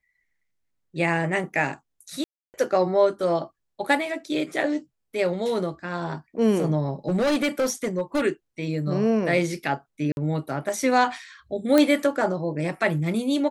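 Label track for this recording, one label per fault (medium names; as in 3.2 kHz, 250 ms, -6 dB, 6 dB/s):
2.240000	2.540000	dropout 299 ms
7.080000	8.230000	clipped -19 dBFS
10.120000	10.170000	dropout 51 ms
11.780000	11.780000	pop -7 dBFS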